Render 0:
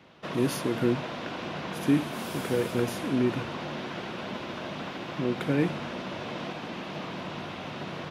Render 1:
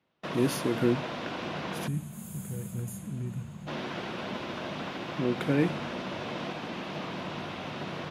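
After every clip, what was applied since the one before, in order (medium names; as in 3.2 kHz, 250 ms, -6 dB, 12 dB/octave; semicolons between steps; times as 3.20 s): gate with hold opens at -36 dBFS; time-frequency box 1.88–3.68 s, 220–6300 Hz -19 dB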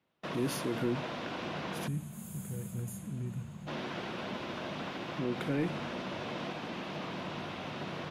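in parallel at -2.5 dB: peak limiter -24.5 dBFS, peak gain reduction 11 dB; on the sum: saturation -14 dBFS, distortion -22 dB; trim -7.5 dB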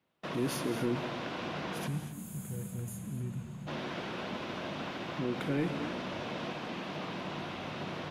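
gated-style reverb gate 270 ms rising, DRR 9.5 dB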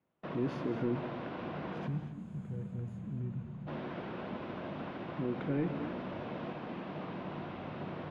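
tape spacing loss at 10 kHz 36 dB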